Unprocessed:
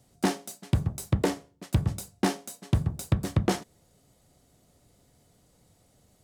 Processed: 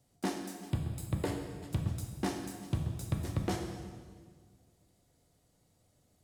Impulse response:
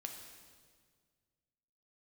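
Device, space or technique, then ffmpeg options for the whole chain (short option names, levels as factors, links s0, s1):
stairwell: -filter_complex "[1:a]atrim=start_sample=2205[s0];[0:a][s0]afir=irnorm=-1:irlink=0,asettb=1/sr,asplit=3[s1][s2][s3];[s1]atrim=end=0.704[s4];[s2]atrim=start=0.7:end=1.7,asetpts=PTS-STARTPTS,afade=t=in:d=0.004:c=qsin,afade=t=out:st=0.996:d=0.004:c=qsin,bandreject=f=5900:w=5[s5];[s3]atrim=start=1.696[s6];[s4][s5]acrossfade=d=0.004:c1=hsin:c2=qsin[s7];[s7][s6]acrossfade=d=0.004:c1=qsin:c2=hsin,volume=0.562"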